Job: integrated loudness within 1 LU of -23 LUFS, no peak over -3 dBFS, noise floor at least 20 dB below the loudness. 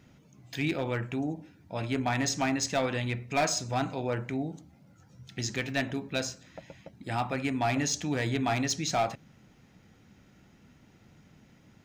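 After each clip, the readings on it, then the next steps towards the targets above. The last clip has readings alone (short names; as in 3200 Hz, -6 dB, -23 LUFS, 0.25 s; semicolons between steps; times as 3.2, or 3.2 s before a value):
clipped 0.4%; flat tops at -21.0 dBFS; loudness -31.0 LUFS; peak -21.0 dBFS; loudness target -23.0 LUFS
-> clip repair -21 dBFS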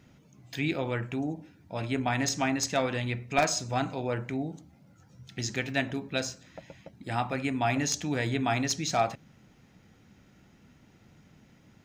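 clipped 0.0%; loudness -30.5 LUFS; peak -12.0 dBFS; loudness target -23.0 LUFS
-> gain +7.5 dB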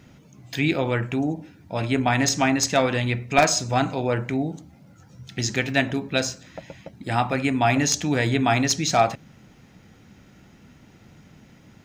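loudness -23.0 LUFS; peak -4.5 dBFS; noise floor -52 dBFS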